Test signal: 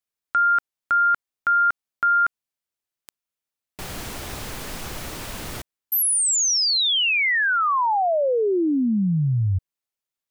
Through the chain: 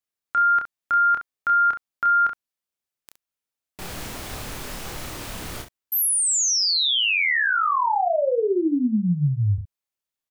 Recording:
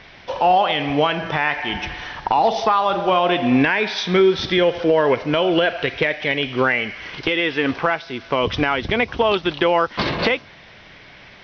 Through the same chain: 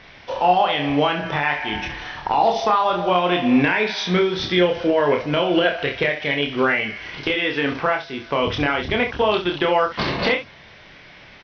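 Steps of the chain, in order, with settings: early reflections 28 ms -4 dB, 67 ms -10.5 dB; trim -2.5 dB

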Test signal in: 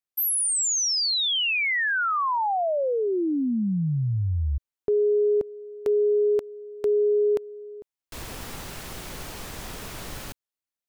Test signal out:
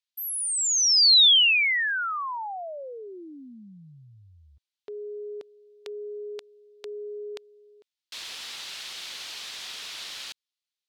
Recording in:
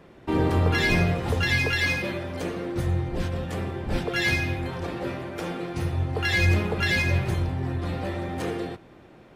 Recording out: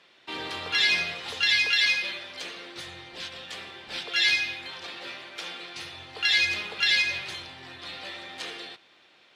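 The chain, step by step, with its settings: band-pass filter 3.8 kHz, Q 1.8; trim +9 dB

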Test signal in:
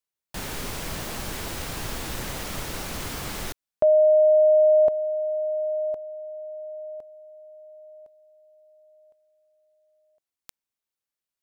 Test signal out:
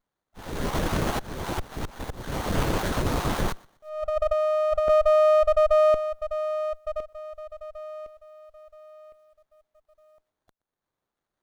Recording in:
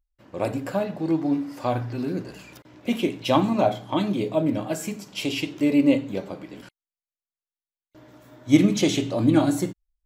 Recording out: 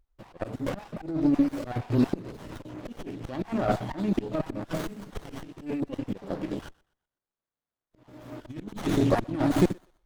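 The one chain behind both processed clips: random holes in the spectrogram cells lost 24%; compressor with a negative ratio -24 dBFS, ratio -1; slow attack 418 ms; on a send: thinning echo 123 ms, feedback 34%, high-pass 770 Hz, level -23 dB; on the sum: sliding maximum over 17 samples; trim +6.5 dB

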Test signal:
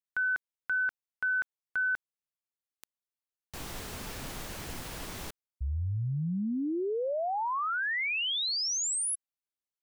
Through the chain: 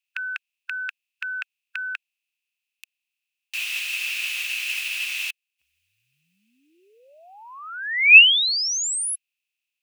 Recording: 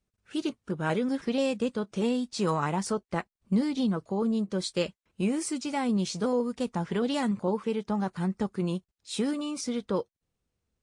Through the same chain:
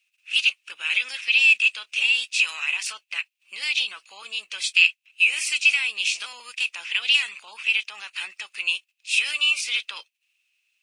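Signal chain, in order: spectral peaks clipped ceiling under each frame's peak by 13 dB; peak limiter -22 dBFS; resonant high-pass 2.6 kHz, resonance Q 12; trim +5.5 dB

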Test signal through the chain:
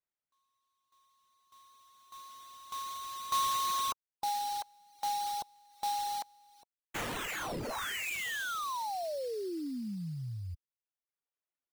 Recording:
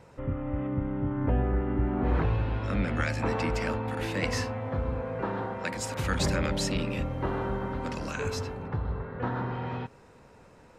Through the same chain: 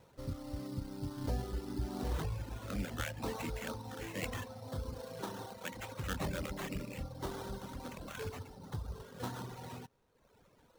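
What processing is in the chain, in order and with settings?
sample-rate reducer 4.9 kHz, jitter 20%; reverb removal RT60 1.1 s; trim -8.5 dB

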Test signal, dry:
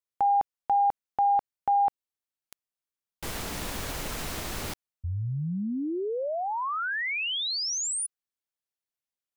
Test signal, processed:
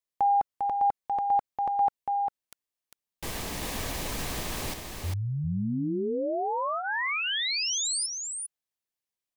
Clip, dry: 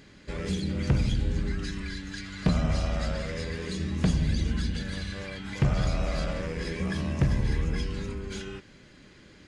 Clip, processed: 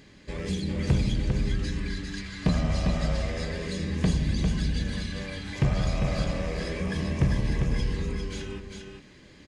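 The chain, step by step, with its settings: band-stop 1.4 kHz, Q 7.3; delay 400 ms -5 dB

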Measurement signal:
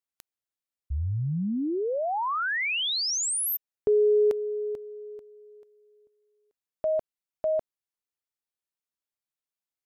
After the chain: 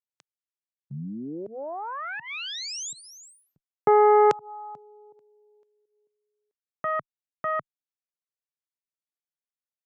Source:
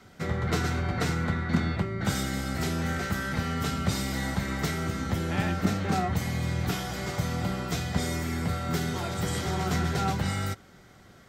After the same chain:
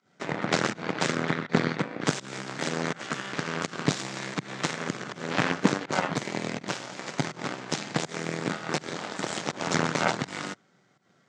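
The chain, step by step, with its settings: volume shaper 82 bpm, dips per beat 1, -15 dB, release 160 ms; Chebyshev shaper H 4 -7 dB, 7 -15 dB, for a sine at -11.5 dBFS; elliptic band-pass 140–7300 Hz, stop band 40 dB; trim +2.5 dB

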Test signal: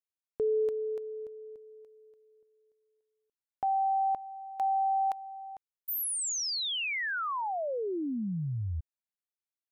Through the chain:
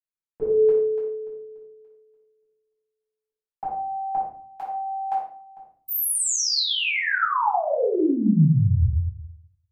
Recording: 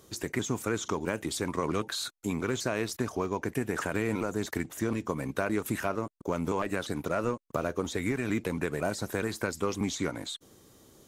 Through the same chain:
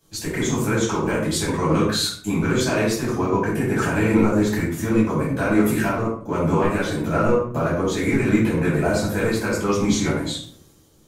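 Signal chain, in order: simulated room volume 850 m³, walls furnished, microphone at 8.4 m; three bands expanded up and down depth 40%

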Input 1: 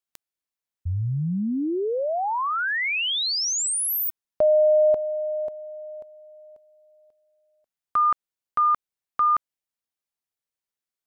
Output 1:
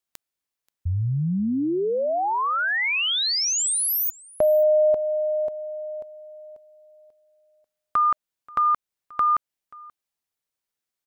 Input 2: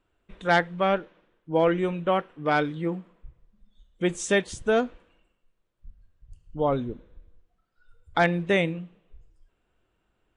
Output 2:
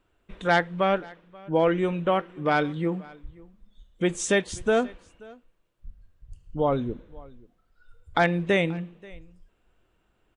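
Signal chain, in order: in parallel at 0 dB: compression, threshold -28 dBFS; on the sum: delay 532 ms -23.5 dB; trim -2.5 dB

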